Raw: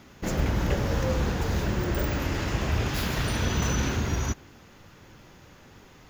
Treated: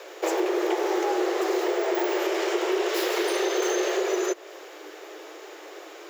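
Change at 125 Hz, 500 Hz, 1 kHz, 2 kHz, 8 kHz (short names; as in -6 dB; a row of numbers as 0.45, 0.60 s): under -40 dB, +9.5 dB, +5.0 dB, +2.0 dB, +1.5 dB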